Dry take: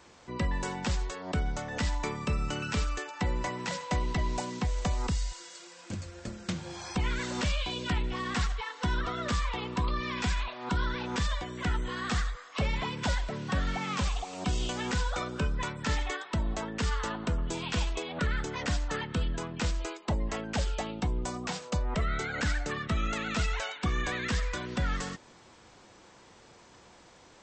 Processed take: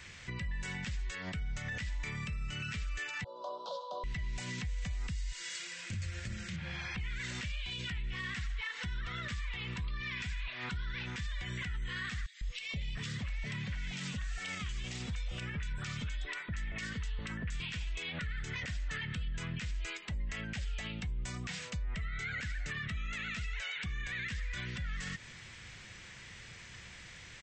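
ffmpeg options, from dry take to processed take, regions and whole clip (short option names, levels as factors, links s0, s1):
-filter_complex "[0:a]asettb=1/sr,asplit=3[s0][s1][s2];[s0]atrim=end=3.244[s3];[s1]atrim=start=3.24:end=4.04,asetpts=PTS-STARTPTS,afade=t=in:d=0.004:c=qsin,afade=t=out:st=0.796:d=0.004:c=qsin,asuperstop=centerf=2000:order=8:qfactor=0.7,highpass=f=450:w=0.5412,highpass=f=450:w=1.3066,equalizer=f=580:t=q:w=4:g=10,equalizer=f=1100:t=q:w=4:g=6,equalizer=f=1700:t=q:w=4:g=9,equalizer=f=2700:t=q:w=4:g=-7,lowpass=f=3300:w=0.5412,lowpass=f=3300:w=1.3066[s4];[s2]atrim=start=4.036[s5];[s3][s4]acrossfade=d=0.004:c1=hsin:c2=qsin[s6];[s6][s5]acrossfade=d=0.004:c1=qsin:c2=hsin,asettb=1/sr,asplit=3[s7][s8][s9];[s7]atrim=end=6.564[s10];[s8]atrim=start=6.56:end=6.98,asetpts=PTS-STARTPTS,afade=t=in:d=0.004:c=qsin,afade=t=out:st=0.416:d=0.004:c=qsin,lowpass=2700,bandreject=f=50:t=h:w=6,bandreject=f=100:t=h:w=6,bandreject=f=150:t=h:w=6,bandreject=f=200:t=h:w=6,bandreject=f=250:t=h:w=6,bandreject=f=300:t=h:w=6,bandreject=f=350:t=h:w=6,bandreject=f=400:t=h:w=6,bandreject=f=450:t=h:w=6,bandreject=f=500:t=h:w=6[s11];[s9]atrim=start=6.976[s12];[s10][s11]acrossfade=d=0.004:c1=hsin:c2=qsin[s13];[s13][s12]acrossfade=d=0.004:c1=qsin:c2=hsin,asettb=1/sr,asplit=3[s14][s15][s16];[s14]atrim=end=12.264[s17];[s15]atrim=start=12.26:end=17.6,asetpts=PTS-STARTPTS,afade=t=in:d=0.004:c=qsin,afade=t=out:st=5.336:d=0.004:c=qsin,acompressor=threshold=0.02:ratio=3:attack=3.2:release=140:knee=1:detection=peak,acrossover=split=790|2400[s18][s19][s20];[s18]adelay=150[s21];[s19]adelay=690[s22];[s21][s22][s20]amix=inputs=3:normalize=0,atrim=end_sample=235494[s23];[s16]atrim=start=17.596[s24];[s17][s23]acrossfade=d=0.004:c1=hsin:c2=qsin[s25];[s25][s24]acrossfade=d=0.004:c1=qsin:c2=hsin,firequalizer=gain_entry='entry(120,0);entry(280,-16);entry(560,-16);entry(860,-18);entry(1900,3);entry(4400,-5)':delay=0.05:min_phase=1,acompressor=threshold=0.01:ratio=6,alimiter=level_in=7.08:limit=0.0631:level=0:latency=1,volume=0.141,volume=3.16"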